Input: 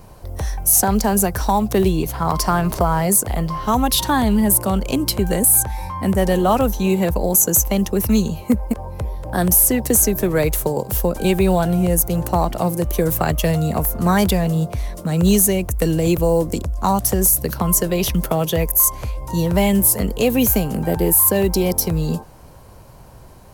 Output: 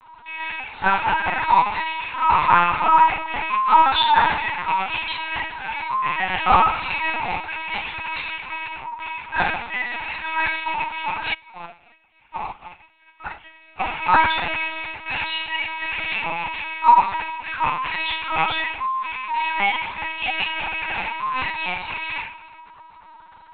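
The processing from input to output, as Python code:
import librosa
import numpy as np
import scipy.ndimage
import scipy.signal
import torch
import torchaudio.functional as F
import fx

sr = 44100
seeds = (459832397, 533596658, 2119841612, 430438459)

y = fx.rattle_buzz(x, sr, strikes_db=-24.0, level_db=-19.0)
y = scipy.signal.sosfilt(scipy.signal.butter(16, 740.0, 'highpass', fs=sr, output='sos'), y)
y = fx.peak_eq(y, sr, hz=3100.0, db=-4.0, octaves=0.75)
y = y + 0.61 * np.pad(y, (int(3.1 * sr / 1000.0), 0))[:len(y)]
y = fx.echo_feedback(y, sr, ms=412, feedback_pct=18, wet_db=-21.0)
y = fx.room_shoebox(y, sr, seeds[0], volume_m3=200.0, walls='mixed', distance_m=2.8)
y = fx.lpc_vocoder(y, sr, seeds[1], excitation='pitch_kept', order=10)
y = fx.upward_expand(y, sr, threshold_db=-26.0, expansion=2.5, at=(11.33, 13.79), fade=0.02)
y = y * 10.0 ** (-3.5 / 20.0)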